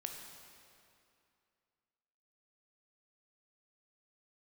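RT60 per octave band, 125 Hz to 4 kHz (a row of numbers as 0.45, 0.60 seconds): 2.4, 2.6, 2.5, 2.5, 2.3, 2.1 seconds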